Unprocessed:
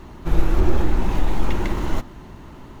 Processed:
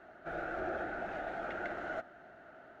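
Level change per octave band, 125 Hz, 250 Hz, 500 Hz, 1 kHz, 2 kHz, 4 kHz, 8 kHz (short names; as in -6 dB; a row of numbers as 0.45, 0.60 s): -30.5 dB, -19.0 dB, -9.5 dB, -8.5 dB, -4.0 dB, -19.0 dB, n/a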